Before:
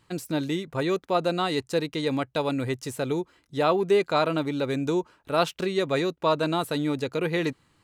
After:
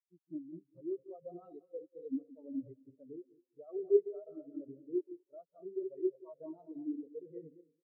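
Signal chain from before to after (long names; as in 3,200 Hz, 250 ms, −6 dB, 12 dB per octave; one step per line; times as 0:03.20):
feedback delay that plays each chunk backwards 112 ms, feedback 72%, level −6 dB
brickwall limiter −16.5 dBFS, peak gain reduction 7 dB
far-end echo of a speakerphone 190 ms, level −6 dB
every bin expanded away from the loudest bin 4 to 1
level −1 dB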